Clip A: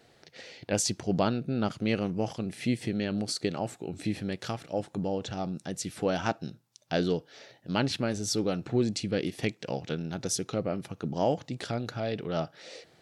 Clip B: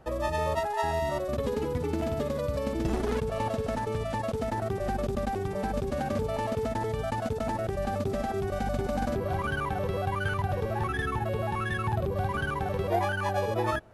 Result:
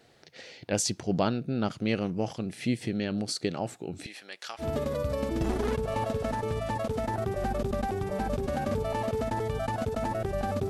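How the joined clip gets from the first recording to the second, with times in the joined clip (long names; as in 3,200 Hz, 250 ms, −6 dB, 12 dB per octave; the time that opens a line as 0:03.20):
clip A
0:04.06–0:04.66: high-pass filter 940 Hz 12 dB per octave
0:04.62: continue with clip B from 0:02.06, crossfade 0.08 s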